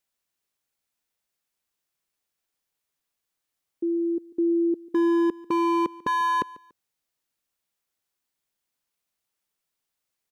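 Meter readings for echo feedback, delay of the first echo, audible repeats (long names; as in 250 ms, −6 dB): 31%, 144 ms, 2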